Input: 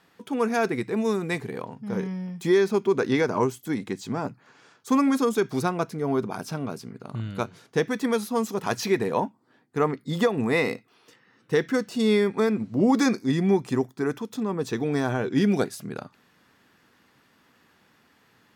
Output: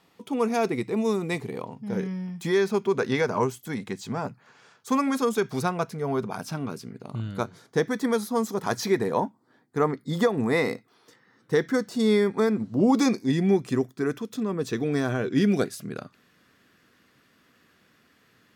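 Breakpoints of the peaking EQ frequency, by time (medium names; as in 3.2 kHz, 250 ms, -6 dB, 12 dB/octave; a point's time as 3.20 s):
peaking EQ -10 dB 0.32 oct
1.78 s 1.6 kHz
2.56 s 310 Hz
6.34 s 310 Hz
7.37 s 2.7 kHz
12.54 s 2.7 kHz
13.65 s 870 Hz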